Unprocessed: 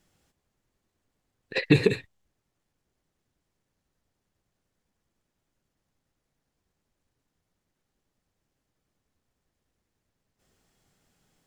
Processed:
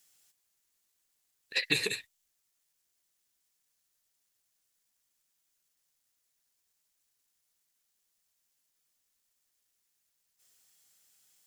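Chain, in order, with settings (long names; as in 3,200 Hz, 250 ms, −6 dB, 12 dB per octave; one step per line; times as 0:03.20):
first-order pre-emphasis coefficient 0.97
level +8.5 dB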